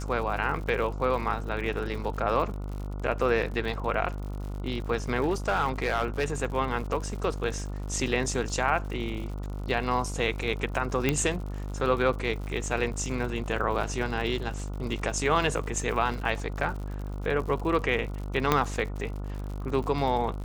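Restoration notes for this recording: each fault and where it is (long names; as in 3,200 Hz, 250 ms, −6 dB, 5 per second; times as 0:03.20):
mains buzz 50 Hz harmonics 29 −34 dBFS
surface crackle 90 per second −36 dBFS
0:05.20–0:06.25: clipping −19.5 dBFS
0:11.09: click −10 dBFS
0:18.52: click −7 dBFS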